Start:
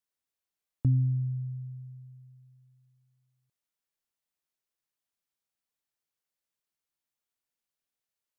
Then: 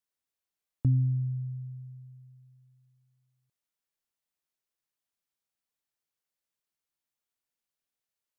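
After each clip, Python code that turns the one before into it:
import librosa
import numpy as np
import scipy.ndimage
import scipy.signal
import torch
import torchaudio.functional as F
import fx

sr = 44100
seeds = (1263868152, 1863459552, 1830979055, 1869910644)

y = x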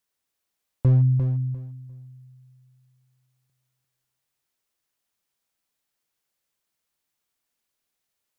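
y = np.clip(10.0 ** (21.5 / 20.0) * x, -1.0, 1.0) / 10.0 ** (21.5 / 20.0)
y = fx.echo_feedback(y, sr, ms=349, feedback_pct=21, wet_db=-7.0)
y = y * 10.0 ** (8.0 / 20.0)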